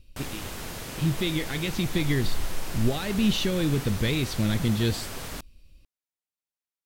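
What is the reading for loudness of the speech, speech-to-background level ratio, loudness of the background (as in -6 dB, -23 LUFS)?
-27.0 LUFS, 9.5 dB, -36.5 LUFS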